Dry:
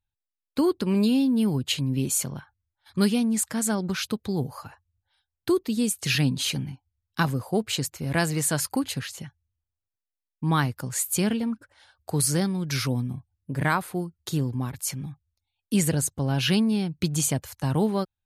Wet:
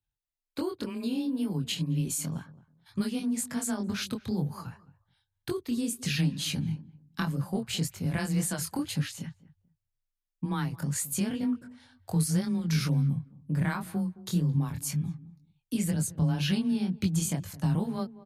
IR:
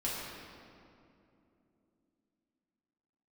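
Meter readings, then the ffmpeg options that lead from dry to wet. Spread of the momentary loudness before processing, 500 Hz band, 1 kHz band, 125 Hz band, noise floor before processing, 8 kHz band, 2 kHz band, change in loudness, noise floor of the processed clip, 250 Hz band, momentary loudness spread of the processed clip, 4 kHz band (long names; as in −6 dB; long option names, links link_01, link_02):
12 LU, −9.5 dB, −9.0 dB, −1.5 dB, below −85 dBFS, −6.5 dB, −8.0 dB, −5.0 dB, −85 dBFS, −4.5 dB, 9 LU, −6.0 dB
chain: -filter_complex "[0:a]afreqshift=18,acompressor=threshold=-25dB:ratio=6,asplit=2[link_01][link_02];[link_02]adelay=217,lowpass=frequency=1100:poles=1,volume=-18dB,asplit=2[link_03][link_04];[link_04]adelay=217,lowpass=frequency=1100:poles=1,volume=0.2[link_05];[link_03][link_05]amix=inputs=2:normalize=0[link_06];[link_01][link_06]amix=inputs=2:normalize=0,flanger=delay=20:depth=5.2:speed=2,asubboost=boost=3.5:cutoff=180"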